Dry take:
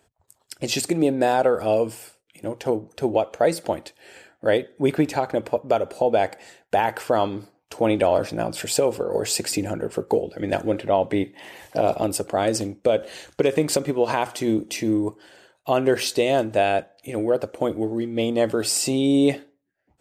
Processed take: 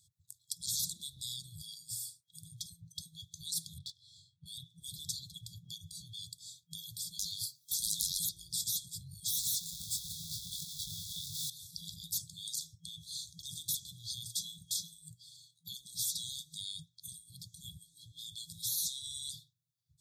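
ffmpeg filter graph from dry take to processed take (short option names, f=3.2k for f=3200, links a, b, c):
-filter_complex "[0:a]asettb=1/sr,asplit=3[a][b][c];[a]atrim=end=3.784[d];[b]atrim=start=3.78:end=4.46,asetpts=PTS-STARTPTS,afade=t=in:d=0.004:c=qsin,afade=t=out:st=0.676:d=0.004:c=qsin,adynamicsmooth=sensitivity=6:basefreq=3.3k,asplit=2[e][f];[f]adelay=22,volume=-2.5dB[g];[e][g]amix=inputs=2:normalize=0,atrim=end_sample=29988[h];[c]atrim=start=4.456[i];[d][h]acrossfade=d=0.004:c1=hsin:c2=qsin[j];[j][i]acrossfade=d=0.004:c1=qsin:c2=hsin,asettb=1/sr,asplit=3[k][l][m];[k]atrim=end=7.194[n];[l]atrim=start=7.19:end=8.29,asetpts=PTS-STARTPTS,afade=t=in:d=0.004:c=qsin,afade=t=out:st=1.096:d=0.004:c=qsin,bass=f=250:g=-15,treble=f=4k:g=9,aeval=exprs='0.398*sin(PI/2*2.82*val(0)/0.398)':c=same[o];[m]atrim=start=8.286[p];[n][o]acrossfade=d=0.004:c1=hsin:c2=qsin[q];[q][p]acrossfade=d=0.004:c1=qsin:c2=hsin,asettb=1/sr,asplit=3[r][s][t];[r]atrim=end=9.284[u];[s]atrim=start=9.28:end=11.5,asetpts=PTS-STARTPTS,afade=t=in:d=0.004:c=qsin,afade=t=out:st=2.216:d=0.004:c=qsin,aeval=exprs='val(0)+0.5*0.0531*sgn(val(0))':c=same,flanger=delay=20:depth=6.6:speed=1.4[v];[t]atrim=start=11.496[w];[u][v]acrossfade=d=0.004:c1=hsin:c2=qsin[x];[x][w]acrossfade=d=0.004:c1=qsin:c2=hsin,afftfilt=real='re*(1-between(b*sr/4096,170,3300))':imag='im*(1-between(b*sr/4096,170,3300))':win_size=4096:overlap=0.75,highpass=110,afftfilt=real='re*lt(hypot(re,im),0.0501)':imag='im*lt(hypot(re,im),0.0501)':win_size=1024:overlap=0.75,volume=2dB"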